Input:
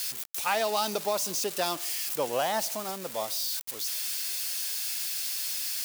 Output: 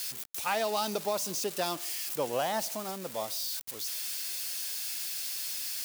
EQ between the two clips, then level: bass shelf 320 Hz +5.5 dB; -3.5 dB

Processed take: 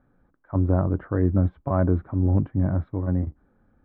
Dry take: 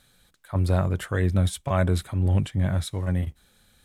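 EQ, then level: low-pass 1.3 kHz 24 dB/octave; peaking EQ 290 Hz +10 dB 0.5 oct; 0.0 dB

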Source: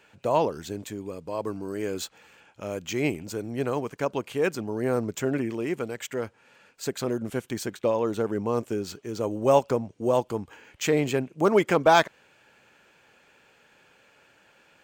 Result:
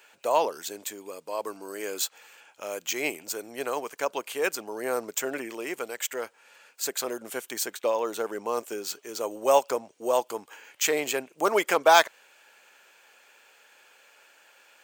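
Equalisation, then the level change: high-pass 540 Hz 12 dB/octave; treble shelf 7.1 kHz +12 dB; +1.5 dB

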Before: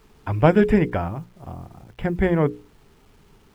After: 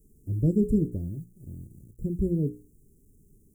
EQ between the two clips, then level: inverse Chebyshev band-stop 830–3900 Hz, stop band 50 dB; bass shelf 230 Hz +3 dB; treble shelf 2.8 kHz +7.5 dB; -6.5 dB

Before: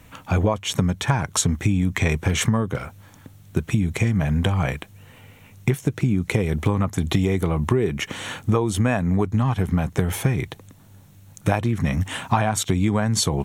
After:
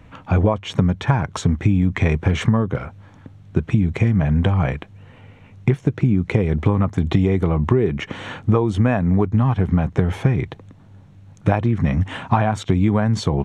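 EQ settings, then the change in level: tape spacing loss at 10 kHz 24 dB; +4.0 dB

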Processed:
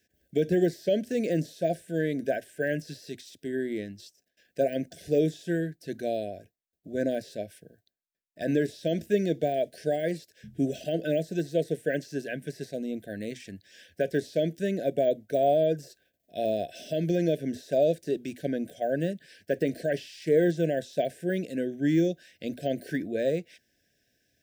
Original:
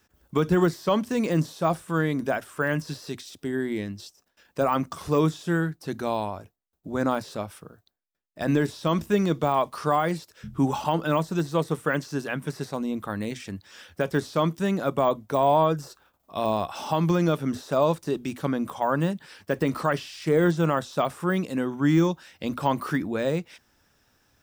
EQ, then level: bass shelf 68 Hz -12 dB; dynamic bell 500 Hz, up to +6 dB, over -35 dBFS, Q 0.91; brick-wall FIR band-stop 730–1500 Hz; -5.5 dB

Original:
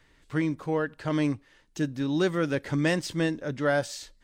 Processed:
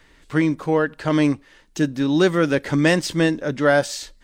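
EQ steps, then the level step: peaking EQ 110 Hz -8.5 dB 0.52 oct; +8.5 dB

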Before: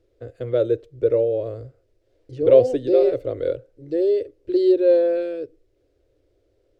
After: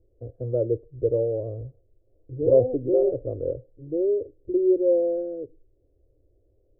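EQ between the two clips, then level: inverse Chebyshev low-pass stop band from 2.6 kHz, stop band 60 dB; bass shelf 190 Hz +11.5 dB; -6.0 dB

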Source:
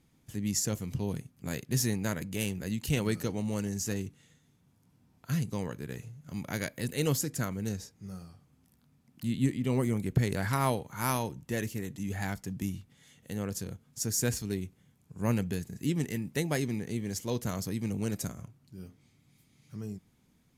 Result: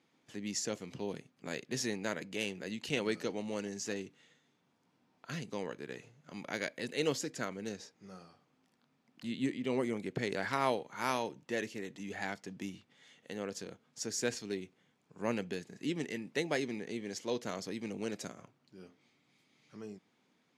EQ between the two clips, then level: dynamic bell 1.1 kHz, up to -4 dB, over -49 dBFS, Q 1.1; band-pass 350–4600 Hz; +1.5 dB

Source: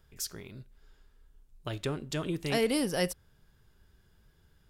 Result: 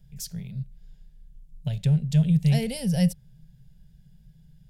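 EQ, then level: resonant low shelf 220 Hz +12.5 dB, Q 3; static phaser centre 320 Hz, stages 6; 0.0 dB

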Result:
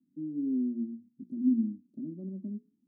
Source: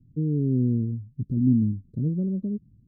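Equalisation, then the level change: ladder high-pass 200 Hz, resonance 40%; hum notches 60/120/180/240/300/360/420 Hz; static phaser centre 460 Hz, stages 6; 0.0 dB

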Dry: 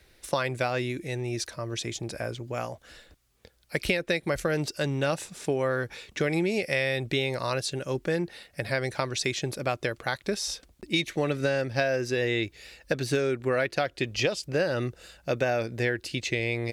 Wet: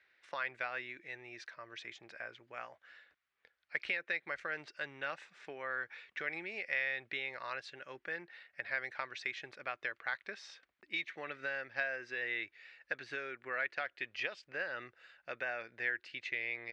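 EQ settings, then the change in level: band-pass filter 1.8 kHz, Q 1.9; distance through air 97 m; -2.5 dB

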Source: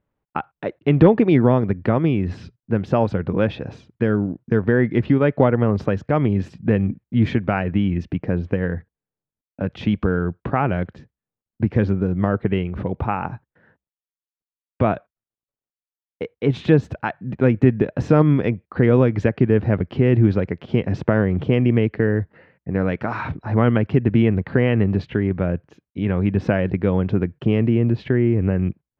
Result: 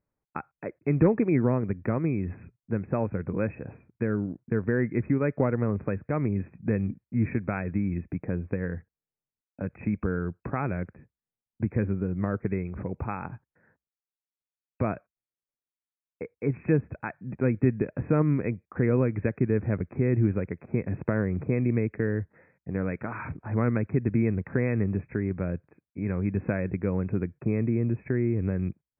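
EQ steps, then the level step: dynamic bell 770 Hz, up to -5 dB, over -36 dBFS, Q 1.9; brick-wall FIR low-pass 2.6 kHz; -8.0 dB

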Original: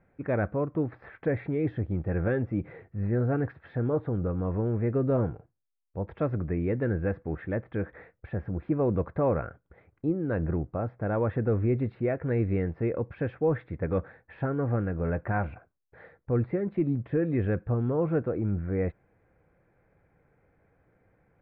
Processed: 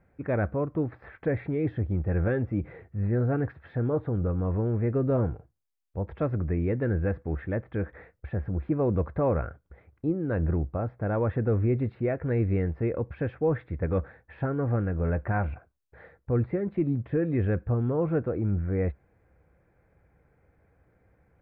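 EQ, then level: peaking EQ 66 Hz +10 dB 0.69 oct; 0.0 dB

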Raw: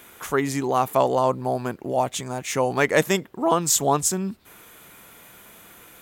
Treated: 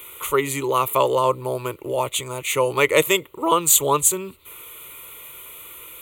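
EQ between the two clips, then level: treble shelf 2.2 kHz +8.5 dB; static phaser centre 1.1 kHz, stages 8; +3.5 dB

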